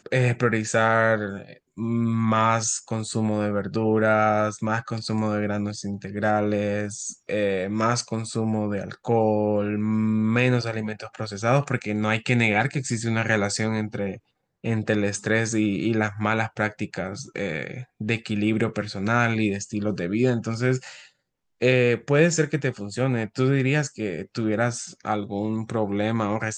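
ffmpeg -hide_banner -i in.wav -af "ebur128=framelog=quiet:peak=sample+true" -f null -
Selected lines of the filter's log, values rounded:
Integrated loudness:
  I:         -24.3 LUFS
  Threshold: -34.4 LUFS
Loudness range:
  LRA:         2.8 LU
  Threshold: -44.5 LUFS
  LRA low:   -26.0 LUFS
  LRA high:  -23.1 LUFS
Sample peak:
  Peak:       -5.6 dBFS
True peak:
  Peak:       -5.5 dBFS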